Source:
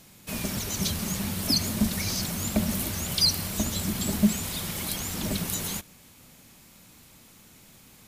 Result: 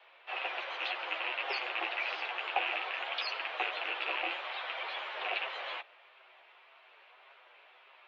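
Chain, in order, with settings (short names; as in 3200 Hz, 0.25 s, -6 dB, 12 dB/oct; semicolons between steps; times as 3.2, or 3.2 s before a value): rattling part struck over -29 dBFS, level -21 dBFS; chorus voices 6, 0.57 Hz, delay 12 ms, depth 4.7 ms; mistuned SSB +130 Hz 470–3000 Hz; gain +5 dB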